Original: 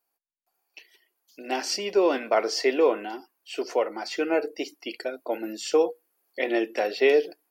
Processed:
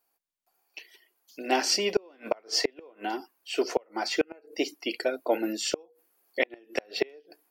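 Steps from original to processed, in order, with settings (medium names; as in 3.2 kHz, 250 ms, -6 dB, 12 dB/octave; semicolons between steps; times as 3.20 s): inverted gate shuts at -15 dBFS, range -34 dB; trim +3.5 dB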